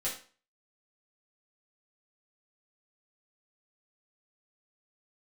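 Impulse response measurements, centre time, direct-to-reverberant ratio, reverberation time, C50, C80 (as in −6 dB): 29 ms, −7.5 dB, 0.40 s, 6.5 dB, 12.0 dB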